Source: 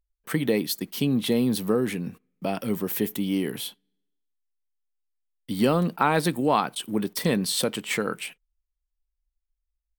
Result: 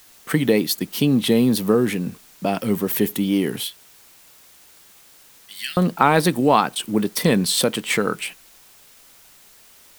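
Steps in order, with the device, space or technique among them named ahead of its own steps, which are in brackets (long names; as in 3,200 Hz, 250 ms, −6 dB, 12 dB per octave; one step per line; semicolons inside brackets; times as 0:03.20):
0:03.64–0:05.77: elliptic high-pass filter 1,700 Hz, stop band 40 dB
plain cassette with noise reduction switched in (one half of a high-frequency compander decoder only; tape wow and flutter; white noise bed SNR 28 dB)
level +6 dB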